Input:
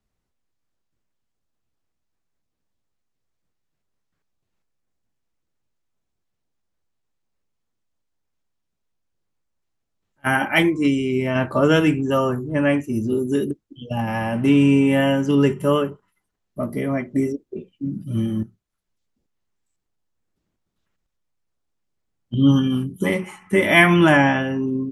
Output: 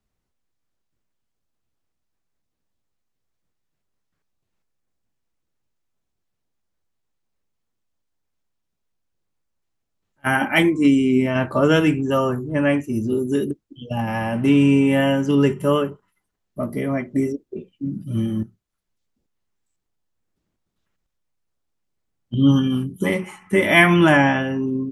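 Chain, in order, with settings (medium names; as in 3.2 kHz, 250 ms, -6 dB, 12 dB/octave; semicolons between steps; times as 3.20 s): 10.41–11.26 s: graphic EQ with 31 bands 250 Hz +8 dB, 5 kHz -3 dB, 8 kHz +5 dB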